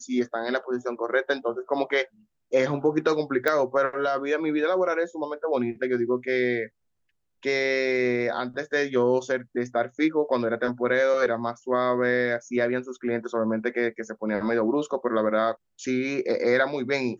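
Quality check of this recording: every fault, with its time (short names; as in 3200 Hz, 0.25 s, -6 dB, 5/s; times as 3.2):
3.48 pop -11 dBFS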